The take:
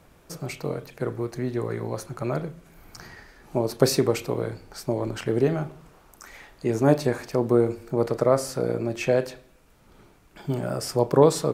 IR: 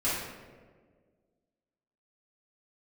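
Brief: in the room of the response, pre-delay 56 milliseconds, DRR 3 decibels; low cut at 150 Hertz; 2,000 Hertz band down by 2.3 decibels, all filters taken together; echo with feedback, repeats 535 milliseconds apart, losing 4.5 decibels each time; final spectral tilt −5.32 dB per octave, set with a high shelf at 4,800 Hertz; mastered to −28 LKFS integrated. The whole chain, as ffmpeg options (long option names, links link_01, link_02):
-filter_complex "[0:a]highpass=150,equalizer=frequency=2000:width_type=o:gain=-4,highshelf=frequency=4800:gain=5,aecho=1:1:535|1070|1605|2140|2675|3210|3745|4280|4815:0.596|0.357|0.214|0.129|0.0772|0.0463|0.0278|0.0167|0.01,asplit=2[link_01][link_02];[1:a]atrim=start_sample=2205,adelay=56[link_03];[link_02][link_03]afir=irnorm=-1:irlink=0,volume=-12.5dB[link_04];[link_01][link_04]amix=inputs=2:normalize=0,volume=-5dB"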